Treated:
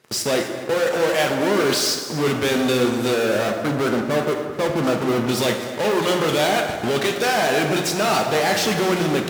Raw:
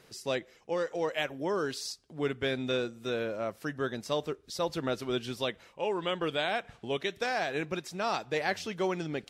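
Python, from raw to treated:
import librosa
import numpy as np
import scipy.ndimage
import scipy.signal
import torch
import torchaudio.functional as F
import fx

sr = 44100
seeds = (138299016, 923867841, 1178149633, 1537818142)

p1 = fx.cheby1_lowpass(x, sr, hz=1500.0, order=8, at=(3.48, 5.29))
p2 = fx.fuzz(p1, sr, gain_db=50.0, gate_db=-51.0)
p3 = p1 + F.gain(torch.from_numpy(p2), -6.0).numpy()
p4 = scipy.signal.sosfilt(scipy.signal.butter(2, 100.0, 'highpass', fs=sr, output='sos'), p3)
p5 = p4 + fx.echo_single(p4, sr, ms=252, db=-16.0, dry=0)
p6 = fx.rev_plate(p5, sr, seeds[0], rt60_s=1.7, hf_ratio=0.55, predelay_ms=0, drr_db=3.0)
y = F.gain(torch.from_numpy(p6), -2.0).numpy()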